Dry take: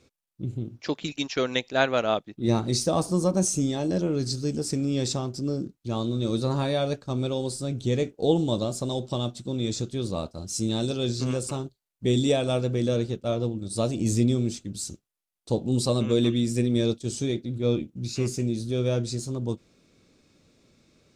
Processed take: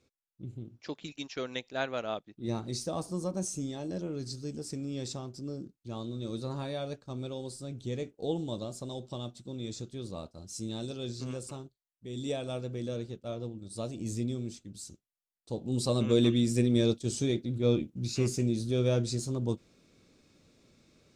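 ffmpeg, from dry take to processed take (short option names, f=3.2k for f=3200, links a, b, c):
-af "volume=7dB,afade=t=out:st=11.46:d=0.63:silence=0.354813,afade=t=in:st=12.09:d=0.21:silence=0.375837,afade=t=in:st=15.52:d=0.64:silence=0.354813"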